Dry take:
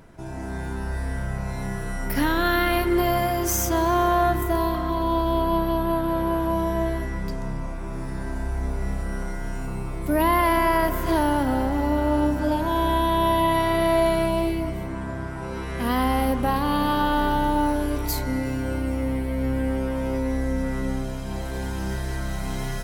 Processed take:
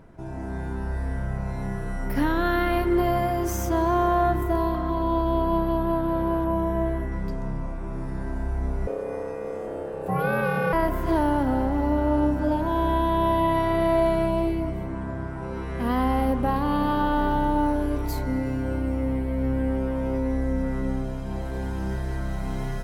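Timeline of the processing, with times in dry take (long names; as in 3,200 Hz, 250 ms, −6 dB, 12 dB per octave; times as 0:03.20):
0:06.44–0:07.12: parametric band 4,700 Hz −8.5 dB
0:08.87–0:10.73: ring modulation 480 Hz
whole clip: high-shelf EQ 2,100 Hz −11 dB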